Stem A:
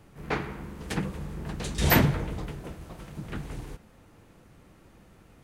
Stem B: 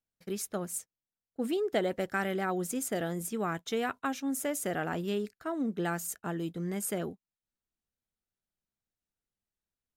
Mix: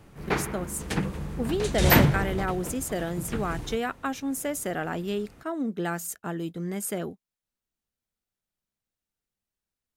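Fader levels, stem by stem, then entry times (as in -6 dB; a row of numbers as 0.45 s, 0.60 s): +2.5 dB, +2.5 dB; 0.00 s, 0.00 s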